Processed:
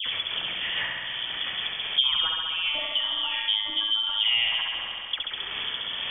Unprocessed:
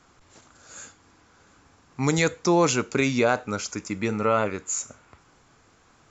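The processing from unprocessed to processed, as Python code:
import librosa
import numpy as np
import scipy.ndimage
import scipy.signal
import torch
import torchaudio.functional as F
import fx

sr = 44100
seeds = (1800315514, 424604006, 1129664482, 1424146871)

p1 = fx.notch(x, sr, hz=1300.0, q=7.7)
p2 = fx.over_compress(p1, sr, threshold_db=-28.0, ratio=-1.0)
p3 = p1 + (p2 * 10.0 ** (0.0 / 20.0))
p4 = fx.rotary_switch(p3, sr, hz=6.0, then_hz=1.1, switch_at_s=1.5)
p5 = fx.transient(p4, sr, attack_db=7, sustain_db=-12)
p6 = fx.stiff_resonator(p5, sr, f0_hz=100.0, decay_s=0.43, stiffness=0.008, at=(2.24, 4.19), fade=0.02)
p7 = fx.dispersion(p6, sr, late='highs', ms=67.0, hz=1300.0)
p8 = p7 + fx.room_flutter(p7, sr, wall_m=11.5, rt60_s=1.1, dry=0)
p9 = fx.freq_invert(p8, sr, carrier_hz=3400)
y = fx.band_squash(p9, sr, depth_pct=100)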